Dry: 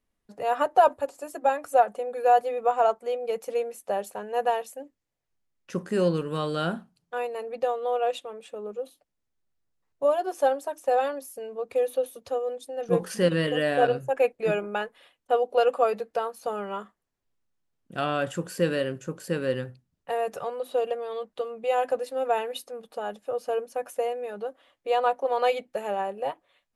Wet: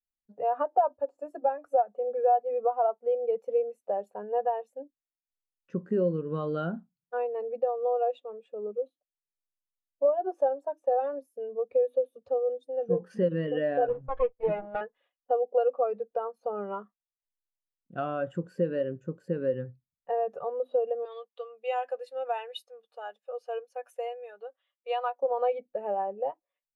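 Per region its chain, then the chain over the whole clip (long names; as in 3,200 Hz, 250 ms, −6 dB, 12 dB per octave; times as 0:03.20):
0:13.89–0:14.81: lower of the sound and its delayed copy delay 6.3 ms + high-shelf EQ 8,900 Hz −3 dB
0:21.05–0:25.22: high-pass filter 370 Hz + tilt shelving filter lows −9 dB, about 1,300 Hz
whole clip: low-pass filter 2,300 Hz 6 dB per octave; downward compressor 3 to 1, threshold −28 dBFS; every bin expanded away from the loudest bin 1.5 to 1; level +2.5 dB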